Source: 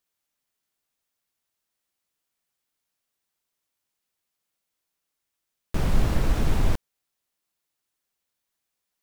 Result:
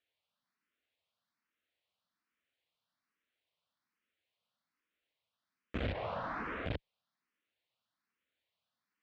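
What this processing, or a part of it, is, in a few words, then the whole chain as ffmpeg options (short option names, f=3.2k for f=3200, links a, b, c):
barber-pole phaser into a guitar amplifier: -filter_complex "[0:a]asettb=1/sr,asplit=3[a][b][c];[a]atrim=end=5.924[d];[b]atrim=start=5.92:end=6.66,asetpts=PTS-STARTPTS,afade=t=in:d=0.004:c=qsin,afade=t=out:st=0.736:d=0.004:c=qsin,acrossover=split=440 2100:gain=0.112 1 0.158[e][f][g];[e][f][g]amix=inputs=3:normalize=0[h];[c]atrim=start=6.656[i];[d][h]acrossfade=d=0.004:c1=hsin:c2=qsin[j];[j][i]acrossfade=d=0.004:c1=qsin:c2=hsin,asplit=2[k][l];[l]afreqshift=1.2[m];[k][m]amix=inputs=2:normalize=1,asoftclip=type=tanh:threshold=-27dB,highpass=100,equalizer=f=140:t=q:w=4:g=-5,equalizer=f=380:t=q:w=4:g=-7,equalizer=f=830:t=q:w=4:g=-5,lowpass=f=3.9k:w=0.5412,lowpass=f=3.9k:w=1.3066,volume=3dB"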